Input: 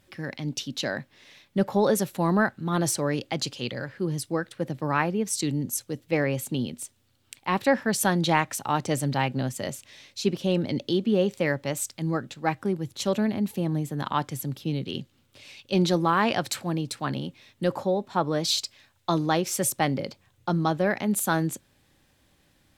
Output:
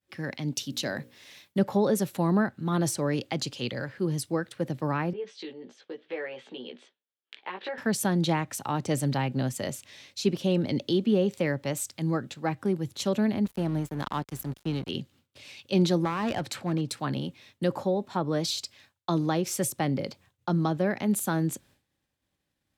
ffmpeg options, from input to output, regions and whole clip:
-filter_complex "[0:a]asettb=1/sr,asplit=3[a][b][c];[a]atrim=end=0.564[d];[b]atrim=start=0.56:end=1.59,asetpts=PTS-STARTPTS,afade=t=in:d=0.004:c=qsin,afade=t=out:st=1.026:d=0.004:c=qsin,highshelf=f=7.1k:g=11,bandreject=f=60:t=h:w=6,bandreject=f=120:t=h:w=6,bandreject=f=180:t=h:w=6,bandreject=f=240:t=h:w=6,bandreject=f=300:t=h:w=6,bandreject=f=360:t=h:w=6,bandreject=f=420:t=h:w=6,bandreject=f=480:t=h:w=6,bandreject=f=540:t=h:w=6[e];[c]atrim=start=1.586[f];[d][e]acrossfade=d=0.004:c1=hsin:c2=qsin[g];[g][f]acrossfade=d=0.004:c1=qsin:c2=hsin,asettb=1/sr,asplit=3[h][i][j];[h]atrim=end=5.134[k];[i]atrim=start=5.13:end=7.78,asetpts=PTS-STARTPTS,afade=t=in:d=0.004:c=qsin,afade=t=out:st=2.646:d=0.004:c=qsin,acompressor=threshold=-34dB:ratio=5:attack=3.2:release=140:knee=1:detection=peak,highpass=f=270:w=0.5412,highpass=f=270:w=1.3066,equalizer=f=270:t=q:w=4:g=-8,equalizer=f=450:t=q:w=4:g=5,equalizer=f=1.7k:t=q:w=4:g=5,equalizer=f=3.3k:t=q:w=4:g=5,lowpass=f=3.7k:w=0.5412,lowpass=f=3.7k:w=1.3066,asplit=2[l][m];[m]adelay=16,volume=-2.5dB[n];[l][n]amix=inputs=2:normalize=0,atrim=end_sample=116865[o];[j]atrim=start=7.776[p];[k][o]acrossfade=d=0.004:c1=hsin:c2=qsin[q];[q][p]acrossfade=d=0.004:c1=qsin:c2=hsin,asettb=1/sr,asplit=3[r][s][t];[r]atrim=end=13.454[u];[s]atrim=start=13.45:end=14.89,asetpts=PTS-STARTPTS,afade=t=in:d=0.004:c=qsin,afade=t=out:st=1.436:d=0.004:c=qsin,aeval=exprs='val(0)+0.00447*(sin(2*PI*50*n/s)+sin(2*PI*2*50*n/s)/2+sin(2*PI*3*50*n/s)/3+sin(2*PI*4*50*n/s)/4+sin(2*PI*5*50*n/s)/5)':c=same,aeval=exprs='sgn(val(0))*max(abs(val(0))-0.0119,0)':c=same[v];[t]atrim=start=14.886[w];[u][v]acrossfade=d=0.004:c1=hsin:c2=qsin[x];[x][w]acrossfade=d=0.004:c1=qsin:c2=hsin,asettb=1/sr,asplit=3[y][z][aa];[y]atrim=end=16.044[ab];[z]atrim=start=16.04:end=16.89,asetpts=PTS-STARTPTS,afade=t=in:d=0.004:c=qsin,afade=t=out:st=0.846:d=0.004:c=qsin,aemphasis=mode=reproduction:type=cd,aeval=exprs='clip(val(0),-1,0.0891)':c=same[ac];[aa]atrim=start=16.886[ad];[ab][ac]acrossfade=d=0.004:c1=hsin:c2=qsin[ae];[ae][ad]acrossfade=d=0.004:c1=qsin:c2=hsin,agate=range=-33dB:threshold=-52dB:ratio=3:detection=peak,acrossover=split=440[af][ag];[ag]acompressor=threshold=-30dB:ratio=3[ah];[af][ah]amix=inputs=2:normalize=0,highpass=40"

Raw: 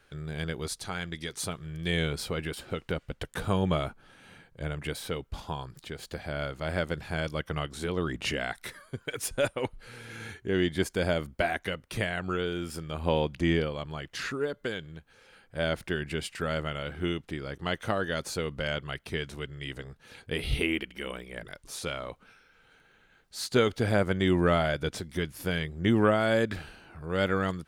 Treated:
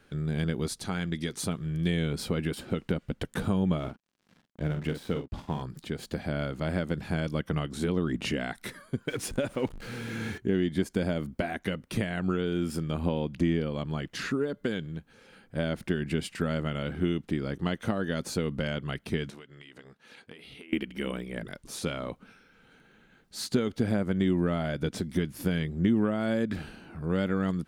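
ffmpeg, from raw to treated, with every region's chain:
-filter_complex "[0:a]asettb=1/sr,asplit=3[a][b][c];[a]atrim=end=3.794[d];[b]atrim=start=3.79:end=5.62,asetpts=PTS-STARTPTS,afade=t=in:d=0.004:c=qsin,afade=t=out:st=1.826:d=0.004:c=qsin,lowpass=f=3.6k:p=1,aeval=exprs='sgn(val(0))*max(abs(val(0))-0.00355,0)':c=same,asplit=2[e][f];[f]adelay=46,volume=-9dB[g];[e][g]amix=inputs=2:normalize=0,atrim=end_sample=80703[h];[c]atrim=start=5.616[i];[d][h]acrossfade=d=0.004:c1=hsin:c2=qsin[j];[j][i]acrossfade=d=0.004:c1=qsin:c2=hsin,asettb=1/sr,asplit=3[k][l][m];[k]atrim=end=9.084[n];[l]atrim=start=9.08:end=10.38,asetpts=PTS-STARTPTS,afade=t=in:d=0.004:c=qsin,afade=t=out:st=1.296:d=0.004:c=qsin,aeval=exprs='val(0)+0.5*0.00891*sgn(val(0))':c=same,highshelf=f=10k:g=-9[o];[m]atrim=start=10.376[p];[n][o]acrossfade=d=0.004:c1=hsin:c2=qsin[q];[q][p]acrossfade=d=0.004:c1=qsin:c2=hsin,asettb=1/sr,asplit=3[r][s][t];[r]atrim=end=19.304[u];[s]atrim=start=19.3:end=20.73,asetpts=PTS-STARTPTS,afade=t=in:d=0.004:c=qsin,afade=t=out:st=1.426:d=0.004:c=qsin,highpass=f=870:p=1,highshelf=f=7.4k:g=-10,acompressor=threshold=-46dB:ratio=12:attack=3.2:release=140:knee=1:detection=peak[v];[t]atrim=start=20.726[w];[u][v]acrossfade=d=0.004:c1=hsin:c2=qsin[x];[x][w]acrossfade=d=0.004:c1=qsin:c2=hsin,acompressor=threshold=-30dB:ratio=6,equalizer=f=220:w=0.96:g=11.5"

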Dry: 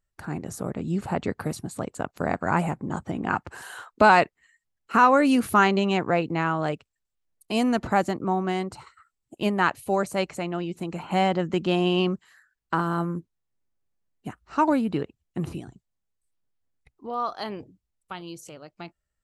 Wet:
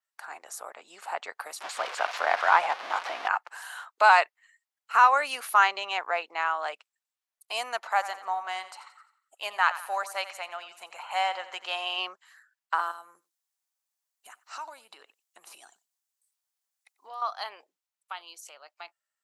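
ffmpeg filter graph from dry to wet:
-filter_complex "[0:a]asettb=1/sr,asplit=3[a][b][c];[a]atrim=end=1.604[d];[b]atrim=start=1.6:end=3.28,asetpts=PTS-STARTPTS,afade=t=in:d=0.004:c=qsin,afade=t=out:st=1.676:d=0.004:c=qsin,aeval=exprs='val(0)+0.5*0.0335*sgn(val(0))':c=same,lowpass=4.2k,acontrast=33[e];[c]atrim=start=3.276[f];[d][e]acrossfade=d=0.004:c1=hsin:c2=qsin[g];[g][f]acrossfade=d=0.004:c1=qsin:c2=hsin,asettb=1/sr,asplit=3[h][i][j];[h]atrim=end=7.804[k];[i]atrim=start=7.8:end=11.98,asetpts=PTS-STARTPTS,afade=t=in:d=0.004:c=qsin,afade=t=out:st=4.176:d=0.004:c=qsin,equalizer=f=320:w=2.2:g=-9.5,aecho=1:1:87|174|261|348:0.2|0.0918|0.0422|0.0194,atrim=end_sample=184338[l];[j]atrim=start=11.976[m];[k][l]acrossfade=d=0.004:c1=hsin:c2=qsin[n];[n][m]acrossfade=d=0.004:c1=qsin:c2=hsin,asettb=1/sr,asplit=3[o][p][q];[o]atrim=end=12.914[r];[p]atrim=start=12.91:end=17.22,asetpts=PTS-STARTPTS,afade=t=in:d=0.004:c=qsin,afade=t=out:st=4.306:d=0.004:c=qsin,bass=f=250:g=7,treble=f=4k:g=10,acompressor=threshold=-31dB:ratio=12:attack=3.2:release=140:knee=1:detection=peak,aecho=1:1:92:0.0841,atrim=end_sample=190071[s];[q]atrim=start=17.216[t];[r][s]acrossfade=d=0.004:c1=hsin:c2=qsin[u];[u][t]acrossfade=d=0.004:c1=qsin:c2=hsin,highpass=f=740:w=0.5412,highpass=f=740:w=1.3066,adynamicequalizer=threshold=0.00112:dfrequency=7700:dqfactor=3:tfrequency=7700:tqfactor=3:attack=5:release=100:ratio=0.375:range=3:mode=cutabove:tftype=bell"

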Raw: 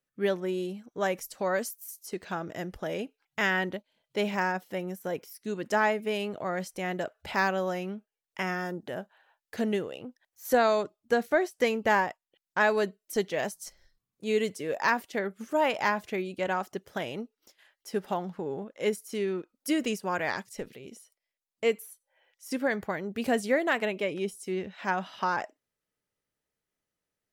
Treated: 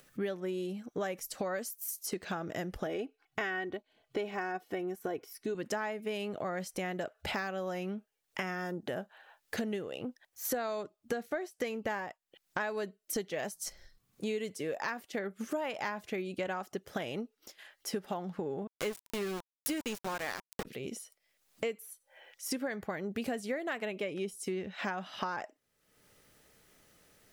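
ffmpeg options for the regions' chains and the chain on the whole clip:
-filter_complex "[0:a]asettb=1/sr,asplit=3[a][b][c];[a]atrim=end=2.864[d];[b]atrim=start=2.86:end=5.55,asetpts=PTS-STARTPTS,afade=t=in:d=0.004:c=qsin,afade=t=out:st=2.686:d=0.004:c=qsin,highshelf=f=3.1k:g=-9,aecho=1:1:2.7:0.58,atrim=end_sample=118629[e];[c]atrim=start=5.546[f];[d][e]acrossfade=d=0.004:c1=hsin:c2=qsin[g];[g][f]acrossfade=d=0.004:c1=qsin:c2=hsin,asettb=1/sr,asplit=3[h][i][j];[h]atrim=end=18.674[k];[i]atrim=start=18.67:end=20.65,asetpts=PTS-STARTPTS,afade=t=in:d=0.004:c=qsin,afade=t=out:st=1.976:d=0.004:c=qsin,highshelf=f=9.3k:g=9,aeval=exprs='val(0)*gte(abs(val(0)),0.0282)':c=same[l];[j]atrim=start=20.646[m];[k][l]acrossfade=d=0.004:c1=hsin:c2=qsin[n];[n][m]acrossfade=d=0.004:c1=qsin:c2=hsin,acompressor=threshold=-40dB:ratio=6,bandreject=f=960:w=15,acompressor=mode=upward:threshold=-55dB:ratio=2.5,volume=6.5dB"

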